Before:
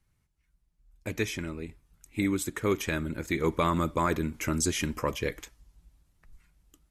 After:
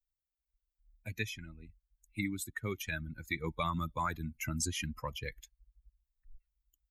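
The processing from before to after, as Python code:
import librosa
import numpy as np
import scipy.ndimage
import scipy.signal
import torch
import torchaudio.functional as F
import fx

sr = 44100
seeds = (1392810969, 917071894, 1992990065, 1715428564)

y = fx.bin_expand(x, sr, power=2.0)
y = fx.peak_eq(y, sr, hz=400.0, db=-10.5, octaves=1.5)
y = fx.band_squash(y, sr, depth_pct=40)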